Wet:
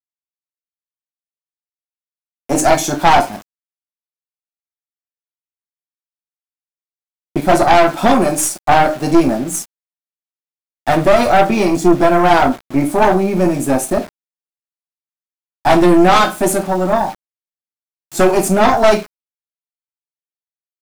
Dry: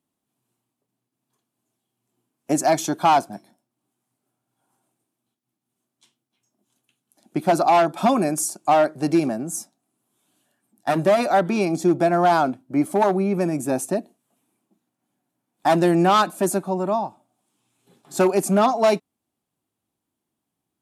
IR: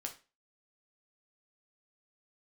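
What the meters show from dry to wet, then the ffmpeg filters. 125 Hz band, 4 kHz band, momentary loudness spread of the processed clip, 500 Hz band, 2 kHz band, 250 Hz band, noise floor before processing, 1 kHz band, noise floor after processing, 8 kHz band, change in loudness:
+6.0 dB, +9.0 dB, 9 LU, +6.5 dB, +10.0 dB, +7.0 dB, -82 dBFS, +7.0 dB, under -85 dBFS, +8.0 dB, +7.0 dB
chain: -filter_complex "[1:a]atrim=start_sample=2205,asetrate=48510,aresample=44100[a];[0:a][a]afir=irnorm=-1:irlink=0,aeval=exprs='0.473*(cos(1*acos(clip(val(0)/0.473,-1,1)))-cos(1*PI/2))+0.0841*(cos(5*acos(clip(val(0)/0.473,-1,1)))-cos(5*PI/2))+0.0841*(cos(6*acos(clip(val(0)/0.473,-1,1)))-cos(6*PI/2))':c=same,aeval=exprs='val(0)*gte(abs(val(0)),0.0178)':c=same,volume=5.5dB"

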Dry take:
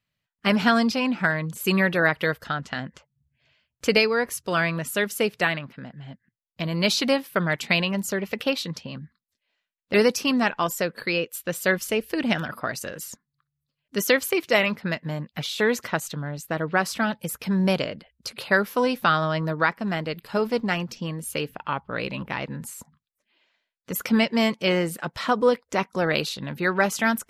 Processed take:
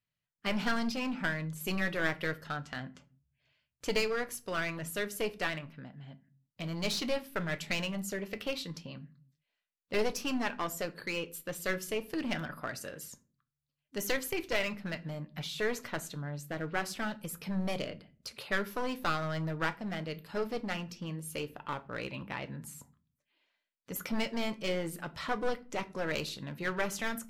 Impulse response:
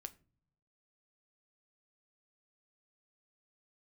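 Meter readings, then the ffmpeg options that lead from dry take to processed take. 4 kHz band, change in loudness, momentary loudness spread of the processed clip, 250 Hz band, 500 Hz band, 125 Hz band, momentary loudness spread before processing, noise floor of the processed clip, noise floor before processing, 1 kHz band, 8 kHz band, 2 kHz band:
-10.5 dB, -11.0 dB, 10 LU, -11.5 dB, -11.5 dB, -9.5 dB, 12 LU, under -85 dBFS, -84 dBFS, -11.5 dB, -9.0 dB, -11.0 dB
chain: -filter_complex "[0:a]aeval=exprs='clip(val(0),-1,0.0708)':c=same[a];[1:a]atrim=start_sample=2205,afade=t=out:st=0.42:d=0.01,atrim=end_sample=18963[b];[a][b]afir=irnorm=-1:irlink=0,volume=-4dB"

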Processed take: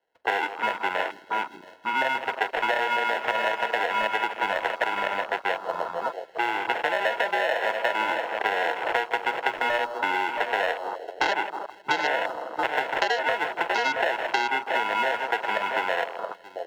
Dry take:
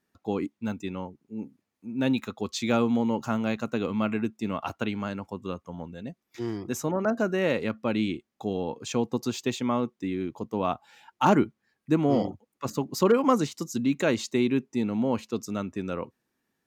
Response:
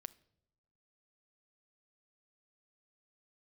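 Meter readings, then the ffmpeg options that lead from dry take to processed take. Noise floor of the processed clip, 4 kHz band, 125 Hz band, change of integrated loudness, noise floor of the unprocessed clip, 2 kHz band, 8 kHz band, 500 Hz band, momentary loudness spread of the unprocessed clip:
-48 dBFS, +7.5 dB, under -20 dB, +2.0 dB, -81 dBFS, +13.5 dB, -6.5 dB, 0.0 dB, 13 LU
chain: -filter_complex "[0:a]acrusher=samples=37:mix=1:aa=0.000001,acrossover=split=480 4200:gain=0.126 1 0.158[a][b][c];[a][b][c]amix=inputs=3:normalize=0,asplit=2[d][e];[e]aecho=0:1:45|675:0.112|0.224[f];[d][f]amix=inputs=2:normalize=0,acompressor=threshold=-32dB:ratio=3,aecho=1:1:160|320|480|640|800|960:0.211|0.123|0.0711|0.0412|0.0239|0.0139,asplit=2[g][h];[1:a]atrim=start_sample=2205[i];[h][i]afir=irnorm=-1:irlink=0,volume=16dB[j];[g][j]amix=inputs=2:normalize=0,afwtdn=0.0282,lowshelf=f=310:t=q:w=1.5:g=-6.5,acrossover=split=620|3800[k][l][m];[k]acompressor=threshold=-48dB:ratio=4[n];[l]acompressor=threshold=-33dB:ratio=4[o];[m]acompressor=threshold=-46dB:ratio=4[p];[n][o][p]amix=inputs=3:normalize=0,volume=8.5dB"

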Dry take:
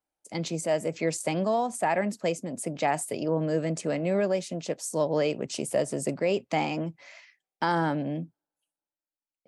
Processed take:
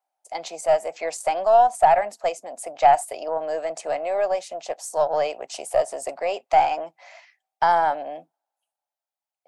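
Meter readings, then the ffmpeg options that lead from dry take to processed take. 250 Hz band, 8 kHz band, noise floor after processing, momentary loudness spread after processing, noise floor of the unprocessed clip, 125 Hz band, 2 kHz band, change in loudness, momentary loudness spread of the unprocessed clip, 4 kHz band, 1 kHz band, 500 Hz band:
-14.5 dB, 0.0 dB, under -85 dBFS, 16 LU, under -85 dBFS, under -15 dB, +2.0 dB, +6.5 dB, 7 LU, +0.5 dB, +11.5 dB, +5.0 dB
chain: -af "highpass=f=730:t=q:w=5.2,aeval=exprs='0.631*(cos(1*acos(clip(val(0)/0.631,-1,1)))-cos(1*PI/2))+0.0158*(cos(6*acos(clip(val(0)/0.631,-1,1)))-cos(6*PI/2))':c=same"

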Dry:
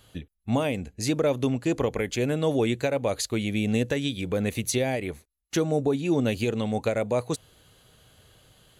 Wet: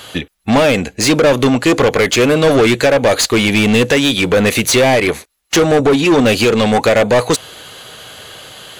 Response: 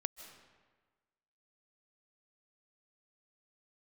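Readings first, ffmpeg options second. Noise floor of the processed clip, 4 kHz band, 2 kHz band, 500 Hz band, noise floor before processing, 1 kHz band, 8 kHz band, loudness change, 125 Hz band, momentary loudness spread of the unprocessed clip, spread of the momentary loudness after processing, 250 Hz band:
-52 dBFS, +18.5 dB, +19.0 dB, +14.5 dB, -69 dBFS, +17.0 dB, +15.5 dB, +14.5 dB, +10.0 dB, 6 LU, 6 LU, +13.0 dB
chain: -filter_complex "[0:a]asplit=2[a][b];[b]highpass=f=720:p=1,volume=25dB,asoftclip=type=tanh:threshold=-11dB[c];[a][c]amix=inputs=2:normalize=0,lowpass=f=5.3k:p=1,volume=-6dB,volume=8dB"

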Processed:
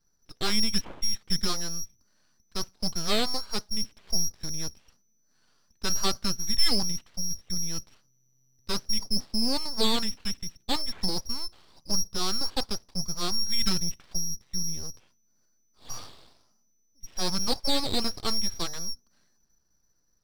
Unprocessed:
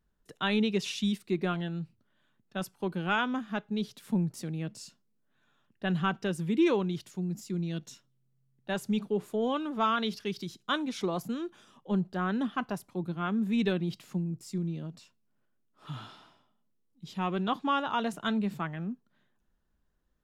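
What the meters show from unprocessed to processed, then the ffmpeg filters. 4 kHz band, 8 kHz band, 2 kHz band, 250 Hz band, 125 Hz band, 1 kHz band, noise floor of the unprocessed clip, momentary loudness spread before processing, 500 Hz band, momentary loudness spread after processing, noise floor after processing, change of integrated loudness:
+12.5 dB, +17.0 dB, -4.0 dB, -5.0 dB, -5.0 dB, -4.5 dB, -73 dBFS, 12 LU, -4.0 dB, 11 LU, -68 dBFS, +2.5 dB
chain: -af "lowpass=f=2.6k:t=q:w=0.5098,lowpass=f=2.6k:t=q:w=0.6013,lowpass=f=2.6k:t=q:w=0.9,lowpass=f=2.6k:t=q:w=2.563,afreqshift=-3000,aeval=exprs='abs(val(0))':c=same,volume=5.5dB"

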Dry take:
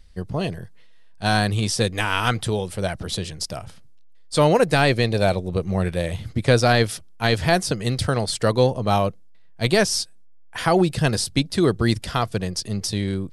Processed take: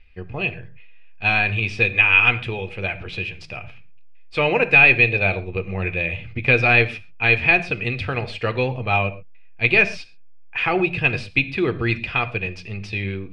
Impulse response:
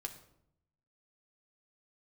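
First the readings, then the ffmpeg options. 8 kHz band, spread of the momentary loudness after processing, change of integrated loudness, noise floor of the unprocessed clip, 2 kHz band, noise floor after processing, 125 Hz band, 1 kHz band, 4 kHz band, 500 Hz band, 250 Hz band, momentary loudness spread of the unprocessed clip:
under -20 dB, 16 LU, +3.0 dB, -43 dBFS, +10.0 dB, -39 dBFS, -3.5 dB, -2.5 dB, -4.0 dB, -3.5 dB, -5.0 dB, 9 LU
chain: -filter_complex "[0:a]lowpass=f=2.5k:t=q:w=15,asplit=2[a][b];[1:a]atrim=start_sample=2205,atrim=end_sample=6174[c];[b][c]afir=irnorm=-1:irlink=0,volume=6dB[d];[a][d]amix=inputs=2:normalize=0,volume=-12dB"

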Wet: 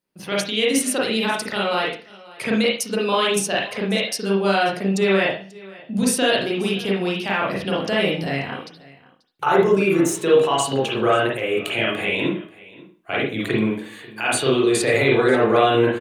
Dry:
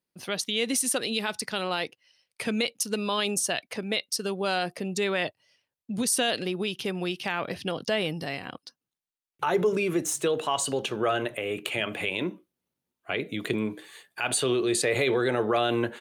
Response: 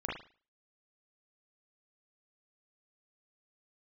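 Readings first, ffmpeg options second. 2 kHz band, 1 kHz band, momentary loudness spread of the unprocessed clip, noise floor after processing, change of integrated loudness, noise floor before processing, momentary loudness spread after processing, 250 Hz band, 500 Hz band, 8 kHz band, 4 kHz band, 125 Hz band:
+8.0 dB, +8.5 dB, 9 LU, -50 dBFS, +7.5 dB, under -85 dBFS, 10 LU, +9.0 dB, +9.0 dB, +2.0 dB, +5.5 dB, +9.0 dB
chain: -filter_complex "[0:a]aecho=1:1:537:0.0841[a];[1:a]atrim=start_sample=2205[b];[a][b]afir=irnorm=-1:irlink=0,volume=4.5dB"

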